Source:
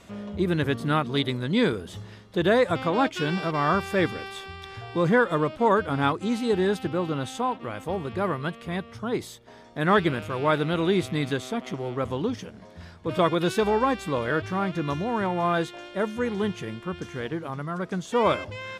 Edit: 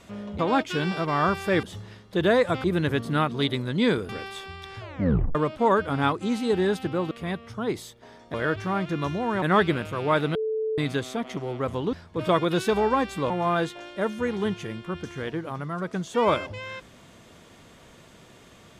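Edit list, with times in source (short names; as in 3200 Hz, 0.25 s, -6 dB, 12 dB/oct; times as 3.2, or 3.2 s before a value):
0.39–1.84 swap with 2.85–4.09
4.79 tape stop 0.56 s
7.11–8.56 cut
10.72–11.15 bleep 438 Hz -24 dBFS
12.3–12.83 cut
14.2–15.28 move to 9.79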